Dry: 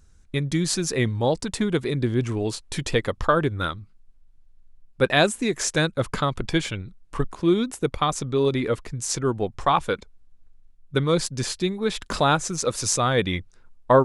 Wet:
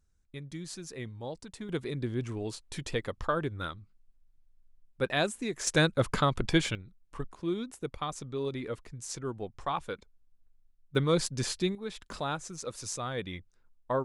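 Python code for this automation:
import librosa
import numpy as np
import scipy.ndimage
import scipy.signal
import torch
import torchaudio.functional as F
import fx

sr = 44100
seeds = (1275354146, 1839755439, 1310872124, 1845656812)

y = fx.gain(x, sr, db=fx.steps((0.0, -17.5), (1.69, -10.0), (5.67, -2.5), (6.75, -12.5), (10.95, -5.0), (11.75, -14.0)))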